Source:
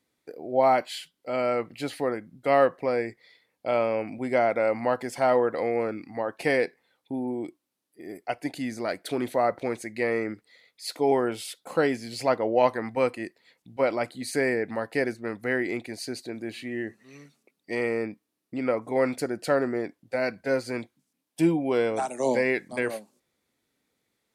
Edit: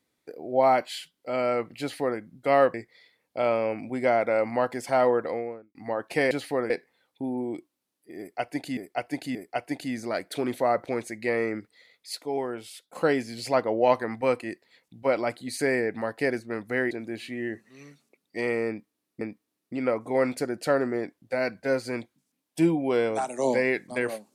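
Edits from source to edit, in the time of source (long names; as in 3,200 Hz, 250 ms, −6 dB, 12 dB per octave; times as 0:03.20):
0:01.80–0:02.19: duplicate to 0:06.60
0:02.74–0:03.03: remove
0:05.42–0:06.04: fade out and dull
0:08.09–0:08.67: repeat, 3 plays
0:10.89–0:11.69: clip gain −7 dB
0:15.65–0:16.25: remove
0:18.02–0:18.55: repeat, 2 plays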